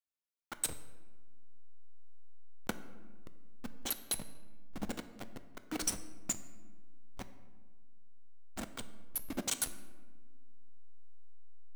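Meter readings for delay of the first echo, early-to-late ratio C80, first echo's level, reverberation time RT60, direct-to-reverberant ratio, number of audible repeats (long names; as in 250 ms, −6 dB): no echo audible, 14.0 dB, no echo audible, 1.4 s, 10.0 dB, no echo audible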